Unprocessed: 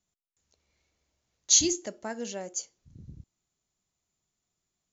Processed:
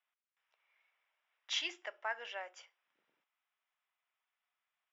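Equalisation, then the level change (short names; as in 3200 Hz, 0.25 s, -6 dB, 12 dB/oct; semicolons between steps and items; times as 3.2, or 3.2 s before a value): polynomial smoothing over 25 samples; Bessel high-pass 1300 Hz, order 4; air absorption 220 m; +8.0 dB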